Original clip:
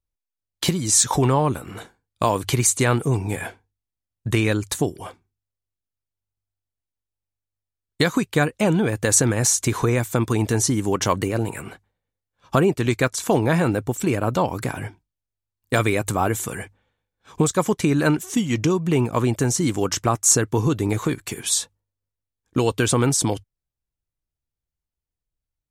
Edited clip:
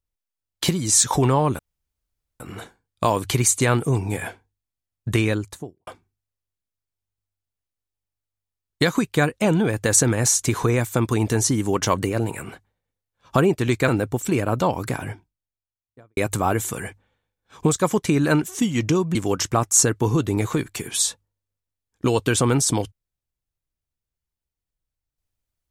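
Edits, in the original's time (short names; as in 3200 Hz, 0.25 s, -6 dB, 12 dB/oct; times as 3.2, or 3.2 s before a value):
1.59 insert room tone 0.81 s
4.34–5.06 studio fade out
13.07–13.63 cut
14.68–15.92 studio fade out
18.9–19.67 cut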